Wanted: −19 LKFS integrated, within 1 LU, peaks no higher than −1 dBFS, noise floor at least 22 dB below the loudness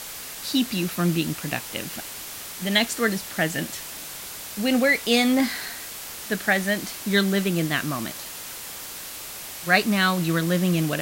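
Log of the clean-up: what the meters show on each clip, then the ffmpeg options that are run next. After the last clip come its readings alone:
background noise floor −37 dBFS; target noise floor −47 dBFS; integrated loudness −24.5 LKFS; sample peak −4.5 dBFS; target loudness −19.0 LKFS
→ -af "afftdn=noise_reduction=10:noise_floor=-37"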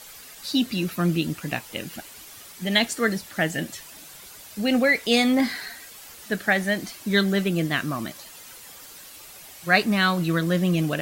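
background noise floor −45 dBFS; target noise floor −46 dBFS
→ -af "afftdn=noise_reduction=6:noise_floor=-45"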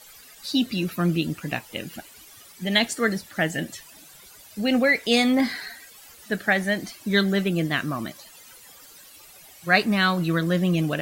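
background noise floor −49 dBFS; integrated loudness −23.5 LKFS; sample peak −4.5 dBFS; target loudness −19.0 LKFS
→ -af "volume=4.5dB,alimiter=limit=-1dB:level=0:latency=1"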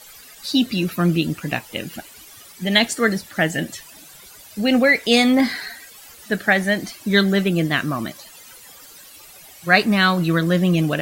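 integrated loudness −19.0 LKFS; sample peak −1.0 dBFS; background noise floor −44 dBFS

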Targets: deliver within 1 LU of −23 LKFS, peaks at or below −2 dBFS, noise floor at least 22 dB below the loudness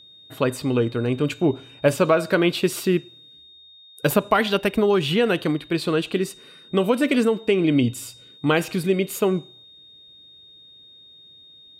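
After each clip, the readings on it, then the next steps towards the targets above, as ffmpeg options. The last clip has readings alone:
interfering tone 3,700 Hz; level of the tone −46 dBFS; integrated loudness −22.0 LKFS; sample peak −4.0 dBFS; target loudness −23.0 LKFS
→ -af "bandreject=frequency=3700:width=30"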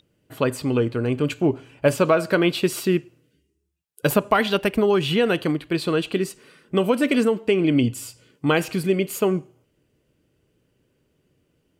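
interfering tone none found; integrated loudness −22.0 LKFS; sample peak −4.0 dBFS; target loudness −23.0 LKFS
→ -af "volume=-1dB"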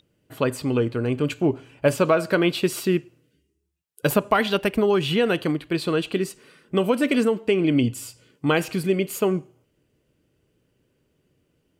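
integrated loudness −23.0 LKFS; sample peak −5.0 dBFS; background noise floor −70 dBFS

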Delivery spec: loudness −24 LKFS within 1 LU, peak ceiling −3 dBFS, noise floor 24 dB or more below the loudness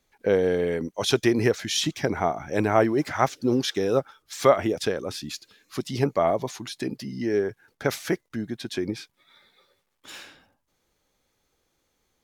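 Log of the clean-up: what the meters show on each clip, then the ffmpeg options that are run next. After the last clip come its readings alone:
integrated loudness −25.5 LKFS; sample peak −5.0 dBFS; target loudness −24.0 LKFS
→ -af "volume=1.5dB"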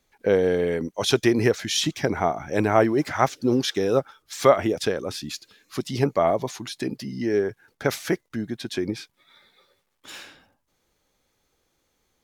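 integrated loudness −24.0 LKFS; sample peak −3.5 dBFS; background noise floor −73 dBFS

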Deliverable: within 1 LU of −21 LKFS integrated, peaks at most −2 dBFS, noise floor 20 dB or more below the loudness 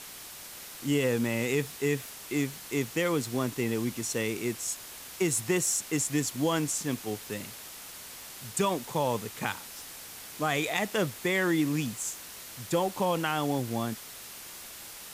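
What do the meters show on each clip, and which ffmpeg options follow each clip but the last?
background noise floor −45 dBFS; target noise floor −50 dBFS; integrated loudness −30.0 LKFS; sample peak −12.0 dBFS; target loudness −21.0 LKFS
→ -af "afftdn=noise_reduction=6:noise_floor=-45"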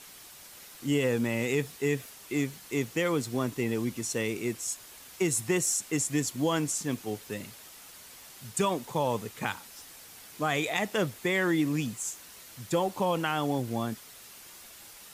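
background noise floor −50 dBFS; integrated loudness −30.0 LKFS; sample peak −12.5 dBFS; target loudness −21.0 LKFS
→ -af "volume=9dB"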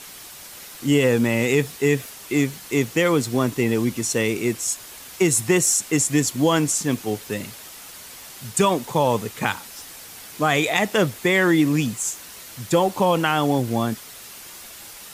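integrated loudness −21.0 LKFS; sample peak −3.5 dBFS; background noise floor −41 dBFS

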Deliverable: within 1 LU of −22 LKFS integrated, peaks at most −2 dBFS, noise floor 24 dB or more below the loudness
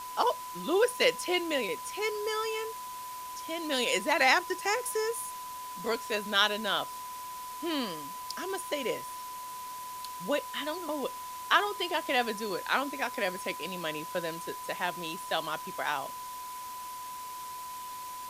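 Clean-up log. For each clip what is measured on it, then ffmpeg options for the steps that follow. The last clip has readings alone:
interfering tone 1,000 Hz; level of the tone −39 dBFS; background noise floor −41 dBFS; target noise floor −56 dBFS; integrated loudness −32.0 LKFS; sample peak −9.0 dBFS; target loudness −22.0 LKFS
→ -af "bandreject=frequency=1000:width=30"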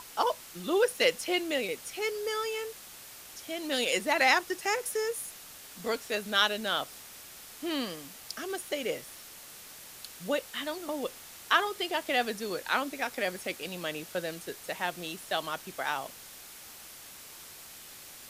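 interfering tone none found; background noise floor −49 dBFS; target noise floor −55 dBFS
→ -af "afftdn=noise_reduction=6:noise_floor=-49"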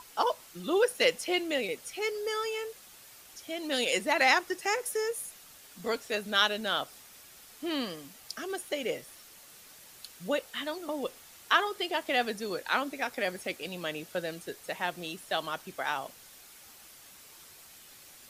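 background noise floor −53 dBFS; target noise floor −55 dBFS
→ -af "afftdn=noise_reduction=6:noise_floor=-53"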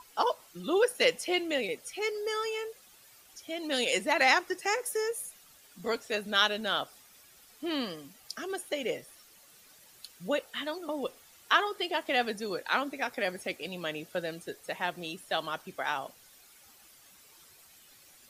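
background noise floor −58 dBFS; integrated loudness −31.0 LKFS; sample peak −9.5 dBFS; target loudness −22.0 LKFS
→ -af "volume=9dB,alimiter=limit=-2dB:level=0:latency=1"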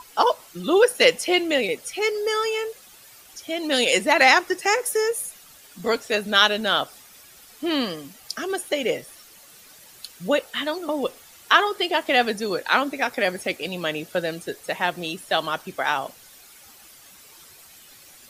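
integrated loudness −22.5 LKFS; sample peak −2.0 dBFS; background noise floor −49 dBFS

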